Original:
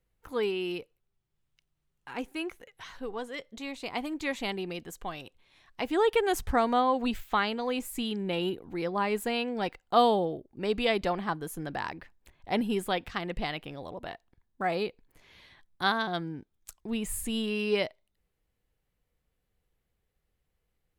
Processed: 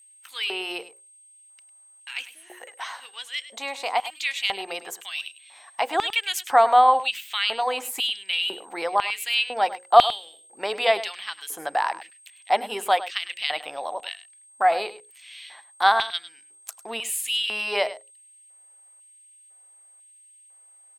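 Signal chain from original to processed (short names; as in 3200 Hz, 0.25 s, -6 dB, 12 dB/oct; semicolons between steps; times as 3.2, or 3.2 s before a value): notches 60/120/180/240/300/360/420/480/540 Hz; LFO high-pass square 1 Hz 750–2800 Hz; in parallel at -1.5 dB: compressor, threshold -38 dBFS, peak gain reduction 23.5 dB; on the sum: whine 8400 Hz -55 dBFS; spectral repair 2.33–2.57, 890–9000 Hz both; on a send: echo 0.102 s -15 dB; on the sum: gain +4 dB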